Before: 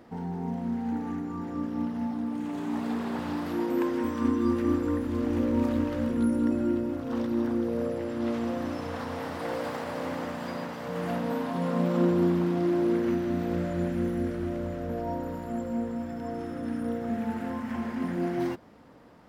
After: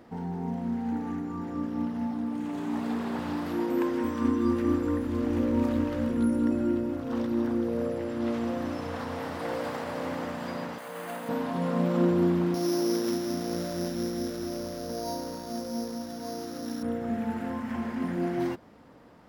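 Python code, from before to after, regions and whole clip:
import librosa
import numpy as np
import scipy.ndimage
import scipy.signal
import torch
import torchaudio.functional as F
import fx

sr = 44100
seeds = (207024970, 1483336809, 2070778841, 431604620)

y = fx.chain(x, sr, fx.highpass(hz=800.0, slope=6),
    fx.resample_bad(factor=4, down='filtered', up='hold'), at=(10.78, 11.29))
y = fx.chain(y, sr, fx.sample_sort(block=8),
    fx.peak_eq(hz=74.0, db=-11.0, octaves=2.2), at=(12.54, 16.83))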